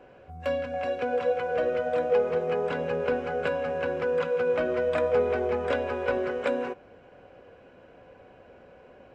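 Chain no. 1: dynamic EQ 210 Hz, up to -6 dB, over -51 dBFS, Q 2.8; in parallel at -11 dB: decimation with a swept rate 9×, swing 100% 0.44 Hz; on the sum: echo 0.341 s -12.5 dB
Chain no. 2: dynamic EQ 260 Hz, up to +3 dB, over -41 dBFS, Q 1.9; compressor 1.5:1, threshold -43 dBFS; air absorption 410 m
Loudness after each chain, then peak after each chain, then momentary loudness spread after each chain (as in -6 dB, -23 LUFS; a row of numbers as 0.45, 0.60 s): -25.5, -35.5 LUFS; -11.5, -22.0 dBFS; 6, 20 LU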